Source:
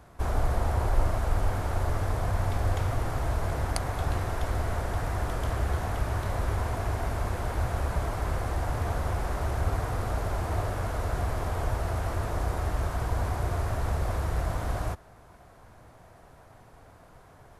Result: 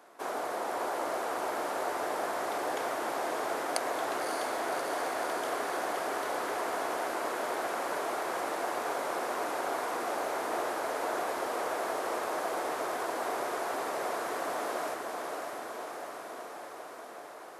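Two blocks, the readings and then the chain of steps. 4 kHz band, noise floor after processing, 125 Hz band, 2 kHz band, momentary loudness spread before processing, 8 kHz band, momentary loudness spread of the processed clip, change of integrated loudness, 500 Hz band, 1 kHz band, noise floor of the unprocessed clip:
+2.5 dB, -45 dBFS, -33.0 dB, +2.5 dB, 3 LU, +2.5 dB, 6 LU, -3.0 dB, +2.5 dB, +2.5 dB, -54 dBFS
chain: HPF 310 Hz 24 dB/oct; on a send: diffused feedback echo 0.593 s, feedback 72%, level -4 dB

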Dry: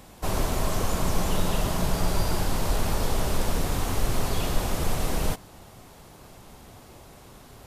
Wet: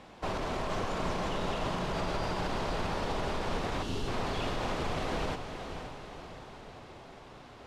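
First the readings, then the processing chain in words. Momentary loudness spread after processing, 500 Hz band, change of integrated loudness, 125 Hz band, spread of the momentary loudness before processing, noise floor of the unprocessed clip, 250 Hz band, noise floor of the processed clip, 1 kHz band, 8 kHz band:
15 LU, -3.0 dB, -6.0 dB, -9.0 dB, 21 LU, -49 dBFS, -5.5 dB, -51 dBFS, -2.0 dB, -15.0 dB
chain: spectral delete 3.83–4.08, 440–2600 Hz; LPF 3600 Hz 12 dB/oct; low shelf 150 Hz -11.5 dB; limiter -24.5 dBFS, peak gain reduction 7 dB; diffused feedback echo 0.518 s, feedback 51%, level -8 dB

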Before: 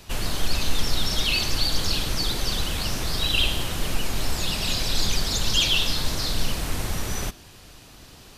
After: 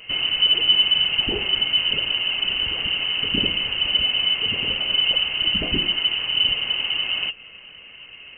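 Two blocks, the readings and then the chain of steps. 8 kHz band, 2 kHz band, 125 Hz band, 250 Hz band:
under -40 dB, +6.5 dB, -9.0 dB, -1.0 dB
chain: small resonant body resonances 200/390/860 Hz, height 17 dB, ringing for 90 ms; inverted band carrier 3000 Hz; dynamic EQ 2000 Hz, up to -4 dB, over -29 dBFS, Q 1

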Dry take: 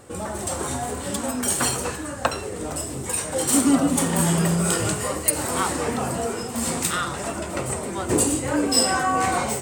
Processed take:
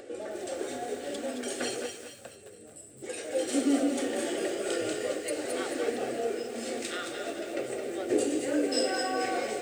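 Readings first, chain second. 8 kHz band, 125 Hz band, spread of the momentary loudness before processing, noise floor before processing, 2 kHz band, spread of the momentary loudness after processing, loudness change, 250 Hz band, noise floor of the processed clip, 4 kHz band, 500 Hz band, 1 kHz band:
-15.5 dB, -26.5 dB, 10 LU, -32 dBFS, -8.0 dB, 12 LU, -8.5 dB, -8.0 dB, -50 dBFS, -8.5 dB, -3.0 dB, -12.0 dB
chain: notch 1300 Hz, Q 13; spectral gain 1.86–3.03, 220–7300 Hz -17 dB; HPF 130 Hz 24 dB/oct; tone controls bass -10 dB, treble +1 dB; upward compressor, threshold -35 dBFS; tape spacing loss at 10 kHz 22 dB; fixed phaser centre 410 Hz, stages 4; on a send: thin delay 0.222 s, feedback 42%, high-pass 1600 Hz, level -7.5 dB; on the sum: lo-fi delay 0.212 s, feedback 35%, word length 8-bit, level -9 dB

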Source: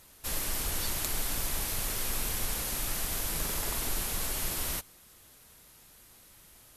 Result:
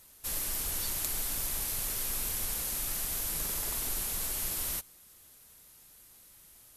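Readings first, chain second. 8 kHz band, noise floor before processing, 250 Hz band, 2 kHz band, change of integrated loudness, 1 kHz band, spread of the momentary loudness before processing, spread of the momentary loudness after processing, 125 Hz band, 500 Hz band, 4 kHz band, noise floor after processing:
+0.5 dB, -57 dBFS, -5.5 dB, -4.5 dB, 0.0 dB, -5.5 dB, 2 LU, 2 LU, -5.5 dB, -5.5 dB, -3.0 dB, -57 dBFS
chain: high shelf 5800 Hz +8 dB; gain -5.5 dB

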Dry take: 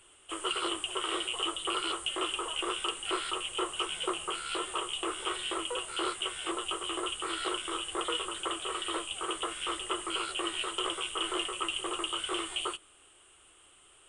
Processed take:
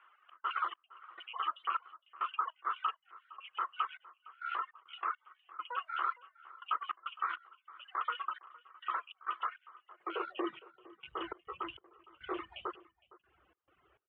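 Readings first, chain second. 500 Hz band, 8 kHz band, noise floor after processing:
-11.5 dB, under -40 dB, -80 dBFS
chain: reverb removal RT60 1 s; LPF 2000 Hz 24 dB/oct; reverb removal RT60 0.71 s; low shelf 72 Hz -8 dB; limiter -28 dBFS, peak gain reduction 7 dB; high-pass sweep 1200 Hz -> 61 Hz, 9.63–11.15; step gate "xx.xx...xxxx..." 102 bpm -24 dB; outdoor echo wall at 79 m, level -20 dB

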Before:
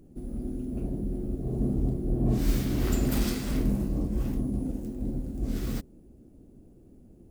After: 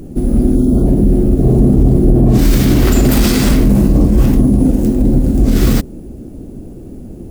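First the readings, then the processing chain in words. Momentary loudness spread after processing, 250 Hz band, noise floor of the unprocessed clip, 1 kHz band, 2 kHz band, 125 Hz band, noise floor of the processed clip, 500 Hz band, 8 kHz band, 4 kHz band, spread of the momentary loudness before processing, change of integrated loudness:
14 LU, +19.0 dB, -54 dBFS, +18.0 dB, +18.0 dB, +18.5 dB, -31 dBFS, +19.0 dB, +17.5 dB, +18.0 dB, 8 LU, +18.5 dB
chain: spectral delete 0.55–0.86, 1500–3100 Hz; maximiser +24 dB; gain -1 dB

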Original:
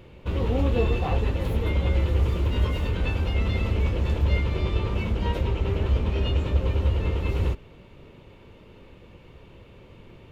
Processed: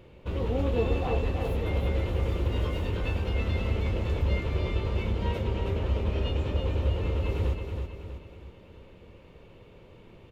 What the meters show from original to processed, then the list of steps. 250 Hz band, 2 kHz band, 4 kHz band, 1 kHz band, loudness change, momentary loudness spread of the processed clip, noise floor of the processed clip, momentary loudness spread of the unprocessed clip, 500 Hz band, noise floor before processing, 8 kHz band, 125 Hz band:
-3.0 dB, -3.5 dB, -3.5 dB, -3.0 dB, -4.0 dB, 8 LU, -52 dBFS, 3 LU, -1.5 dB, -50 dBFS, n/a, -4.0 dB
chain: bell 520 Hz +3 dB 1.1 oct; on a send: feedback echo 0.322 s, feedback 46%, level -6 dB; on the sum: gain -5 dB

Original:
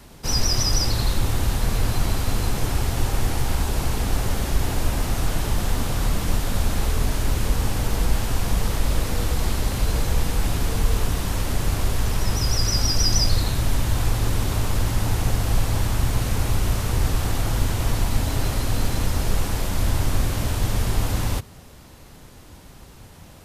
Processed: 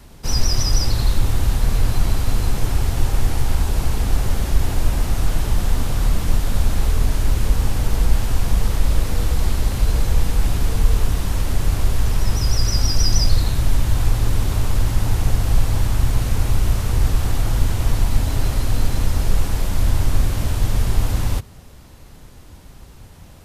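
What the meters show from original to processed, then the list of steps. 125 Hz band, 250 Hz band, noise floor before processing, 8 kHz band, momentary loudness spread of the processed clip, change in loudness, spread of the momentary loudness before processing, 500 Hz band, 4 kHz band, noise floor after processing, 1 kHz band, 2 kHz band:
+3.0 dB, 0.0 dB, -45 dBFS, -1.0 dB, 3 LU, +2.5 dB, 4 LU, -0.5 dB, -1.0 dB, -42 dBFS, -1.0 dB, -1.0 dB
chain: low shelf 92 Hz +7.5 dB; gain -1 dB

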